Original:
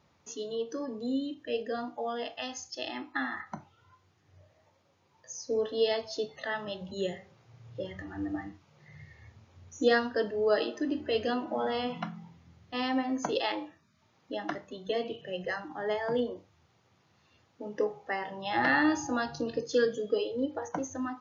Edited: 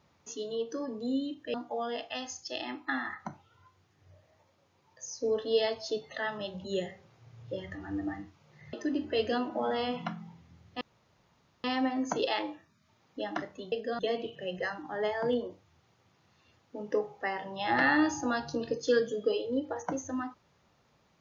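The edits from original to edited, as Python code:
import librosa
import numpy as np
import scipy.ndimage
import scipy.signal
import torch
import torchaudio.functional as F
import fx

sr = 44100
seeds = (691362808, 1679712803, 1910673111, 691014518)

y = fx.edit(x, sr, fx.move(start_s=1.54, length_s=0.27, to_s=14.85),
    fx.cut(start_s=9.0, length_s=1.69),
    fx.insert_room_tone(at_s=12.77, length_s=0.83), tone=tone)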